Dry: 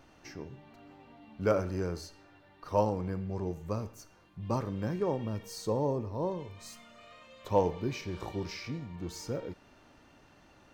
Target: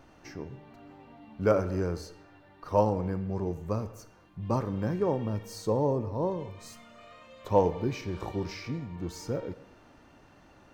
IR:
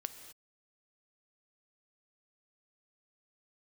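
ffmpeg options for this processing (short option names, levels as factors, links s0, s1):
-filter_complex "[0:a]asplit=2[s0][s1];[1:a]atrim=start_sample=2205,lowpass=2300[s2];[s1][s2]afir=irnorm=-1:irlink=0,volume=0.631[s3];[s0][s3]amix=inputs=2:normalize=0"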